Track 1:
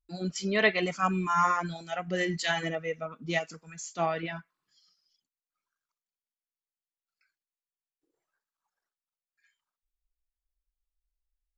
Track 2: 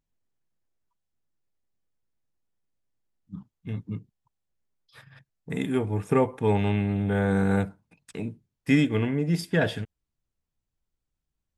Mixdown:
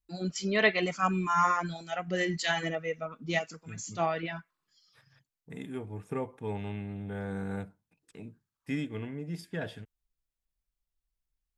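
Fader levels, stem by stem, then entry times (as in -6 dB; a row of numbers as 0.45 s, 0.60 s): -0.5 dB, -12.5 dB; 0.00 s, 0.00 s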